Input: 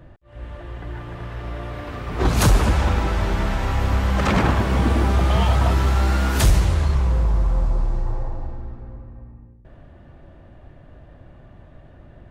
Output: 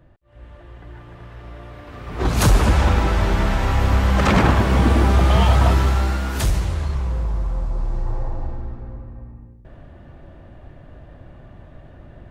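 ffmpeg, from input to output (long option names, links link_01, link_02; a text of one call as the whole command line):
ffmpeg -i in.wav -af "volume=10dB,afade=type=in:start_time=1.86:duration=0.94:silence=0.316228,afade=type=out:start_time=5.68:duration=0.54:silence=0.446684,afade=type=in:start_time=7.69:duration=0.79:silence=0.446684" out.wav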